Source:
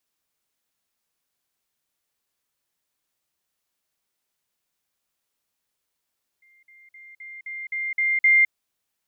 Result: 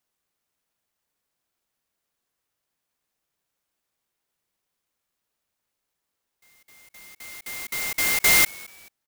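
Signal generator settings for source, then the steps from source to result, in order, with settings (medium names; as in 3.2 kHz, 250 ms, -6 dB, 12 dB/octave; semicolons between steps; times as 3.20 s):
level ladder 2.1 kHz -55 dBFS, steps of 6 dB, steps 8, 0.21 s 0.05 s
frequency-shifting echo 217 ms, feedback 39%, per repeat +96 Hz, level -24 dB; sampling jitter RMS 0.078 ms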